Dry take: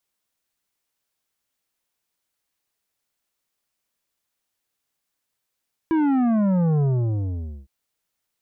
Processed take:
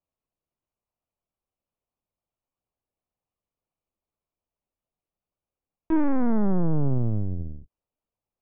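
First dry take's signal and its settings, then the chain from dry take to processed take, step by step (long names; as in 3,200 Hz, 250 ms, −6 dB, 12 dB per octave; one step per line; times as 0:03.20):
bass drop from 330 Hz, over 1.76 s, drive 10 dB, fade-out 0.85 s, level −18 dB
adaptive Wiener filter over 25 samples
linear-prediction vocoder at 8 kHz pitch kept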